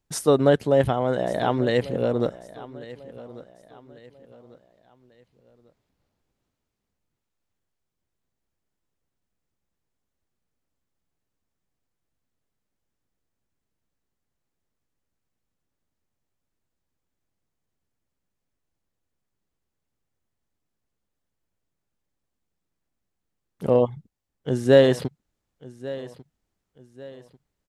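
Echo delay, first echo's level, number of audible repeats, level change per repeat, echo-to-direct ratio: 1144 ms, -18.0 dB, 2, -8.5 dB, -17.5 dB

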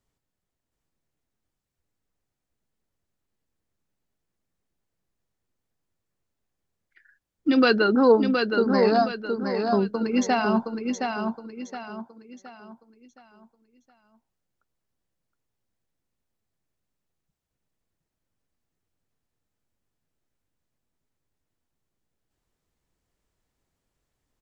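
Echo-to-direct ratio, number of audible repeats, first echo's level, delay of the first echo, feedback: -4.5 dB, 4, -5.0 dB, 718 ms, 37%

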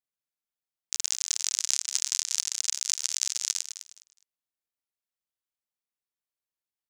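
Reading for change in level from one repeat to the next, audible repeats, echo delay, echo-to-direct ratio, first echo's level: -13.0 dB, 2, 207 ms, -11.0 dB, -11.0 dB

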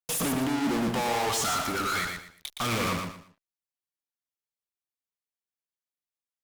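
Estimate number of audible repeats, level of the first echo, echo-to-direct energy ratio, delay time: 3, -5.0 dB, -4.5 dB, 117 ms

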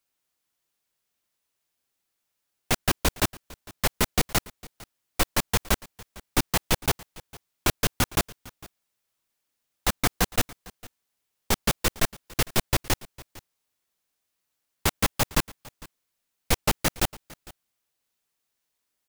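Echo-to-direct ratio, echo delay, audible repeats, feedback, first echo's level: -21.5 dB, 454 ms, 1, no regular repeats, -21.5 dB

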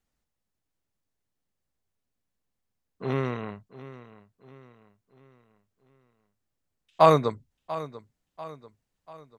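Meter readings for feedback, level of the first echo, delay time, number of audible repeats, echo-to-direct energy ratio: 45%, -16.0 dB, 691 ms, 3, -15.0 dB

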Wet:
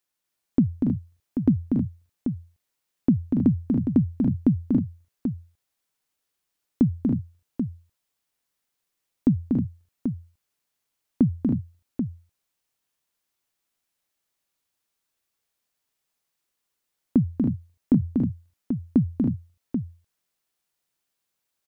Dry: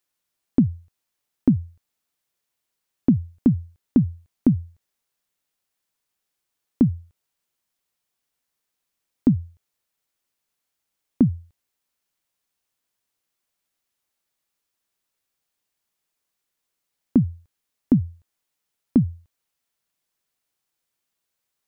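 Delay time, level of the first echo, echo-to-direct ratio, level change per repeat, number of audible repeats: 240 ms, -5.0 dB, -1.0 dB, no regular repeats, 4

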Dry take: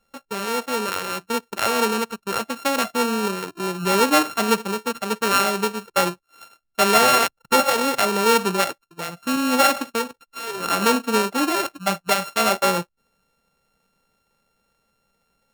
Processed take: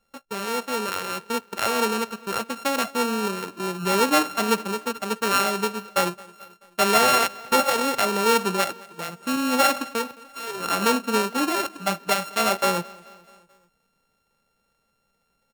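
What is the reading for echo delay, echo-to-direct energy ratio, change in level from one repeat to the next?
217 ms, -21.5 dB, -5.0 dB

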